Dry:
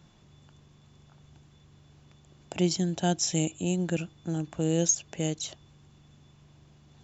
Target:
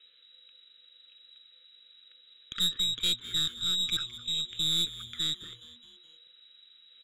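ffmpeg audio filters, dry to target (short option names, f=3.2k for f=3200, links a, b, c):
-filter_complex "[0:a]lowpass=f=3.4k:t=q:w=0.5098,lowpass=f=3.4k:t=q:w=0.6013,lowpass=f=3.4k:t=q:w=0.9,lowpass=f=3.4k:t=q:w=2.563,afreqshift=-4000,highpass=f=190:p=1,aeval=exprs='(tanh(14.1*val(0)+0.55)-tanh(0.55))/14.1':c=same,asuperstop=centerf=790:order=8:qfactor=0.97,asplit=5[a][b][c][d][e];[b]adelay=209,afreqshift=-120,volume=-16dB[f];[c]adelay=418,afreqshift=-240,volume=-22dB[g];[d]adelay=627,afreqshift=-360,volume=-28dB[h];[e]adelay=836,afreqshift=-480,volume=-34.1dB[i];[a][f][g][h][i]amix=inputs=5:normalize=0,volume=1.5dB"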